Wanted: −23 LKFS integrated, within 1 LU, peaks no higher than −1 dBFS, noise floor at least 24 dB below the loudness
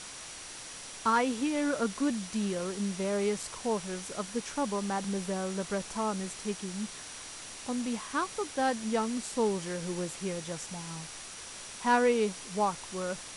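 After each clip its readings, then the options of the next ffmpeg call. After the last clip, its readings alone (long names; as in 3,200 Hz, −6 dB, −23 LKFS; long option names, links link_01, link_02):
interfering tone 5,800 Hz; level of the tone −52 dBFS; background noise floor −45 dBFS; target noise floor −57 dBFS; integrated loudness −32.5 LKFS; sample peak −14.5 dBFS; target loudness −23.0 LKFS
→ -af "bandreject=frequency=5800:width=30"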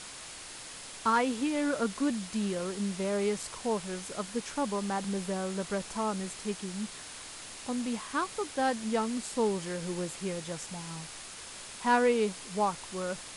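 interfering tone none found; background noise floor −45 dBFS; target noise floor −57 dBFS
→ -af "afftdn=noise_reduction=12:noise_floor=-45"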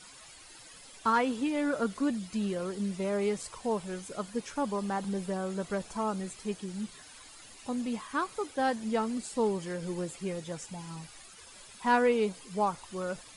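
background noise floor −52 dBFS; target noise floor −57 dBFS
→ -af "afftdn=noise_reduction=6:noise_floor=-52"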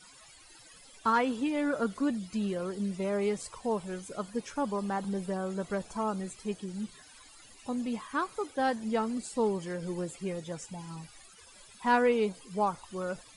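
background noise floor −55 dBFS; target noise floor −57 dBFS
→ -af "afftdn=noise_reduction=6:noise_floor=-55"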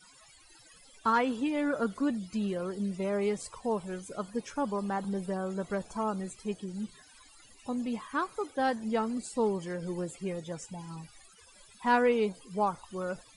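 background noise floor −58 dBFS; integrated loudness −32.5 LKFS; sample peak −14.5 dBFS; target loudness −23.0 LKFS
→ -af "volume=9.5dB"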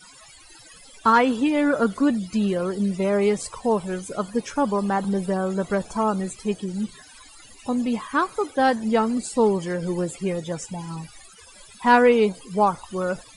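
integrated loudness −23.0 LKFS; sample peak −5.0 dBFS; background noise floor −48 dBFS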